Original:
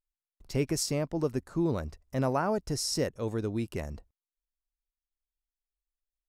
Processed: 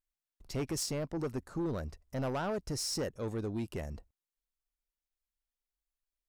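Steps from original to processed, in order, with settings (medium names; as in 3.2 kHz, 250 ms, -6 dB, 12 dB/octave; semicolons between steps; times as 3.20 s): saturation -28 dBFS, distortion -10 dB; trim -1.5 dB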